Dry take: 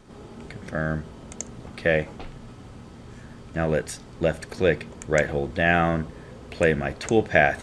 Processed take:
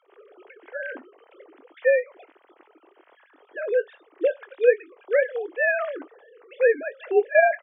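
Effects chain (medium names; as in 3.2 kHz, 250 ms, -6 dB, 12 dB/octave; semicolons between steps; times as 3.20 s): formants replaced by sine waves; steep high-pass 280 Hz 36 dB/octave; doubling 22 ms -13.5 dB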